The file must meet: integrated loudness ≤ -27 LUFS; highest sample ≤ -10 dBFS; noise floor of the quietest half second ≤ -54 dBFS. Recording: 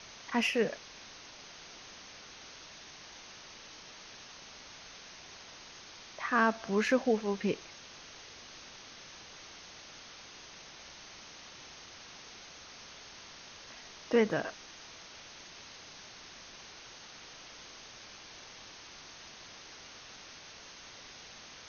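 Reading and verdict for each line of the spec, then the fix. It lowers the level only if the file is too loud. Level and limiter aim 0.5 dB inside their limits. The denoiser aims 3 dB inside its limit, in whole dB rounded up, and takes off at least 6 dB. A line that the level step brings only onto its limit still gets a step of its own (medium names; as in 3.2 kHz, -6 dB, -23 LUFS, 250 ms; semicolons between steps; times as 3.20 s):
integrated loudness -39.0 LUFS: pass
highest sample -15.0 dBFS: pass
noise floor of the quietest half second -51 dBFS: fail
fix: noise reduction 6 dB, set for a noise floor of -51 dBFS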